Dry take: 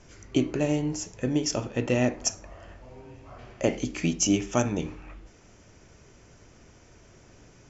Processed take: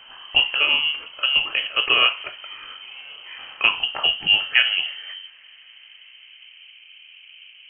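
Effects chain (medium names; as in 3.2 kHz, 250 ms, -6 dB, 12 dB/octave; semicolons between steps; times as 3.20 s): low-pass sweep 2 kHz -> 800 Hz, 3.56–6.85 s; frequency inversion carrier 3.1 kHz; trim +5.5 dB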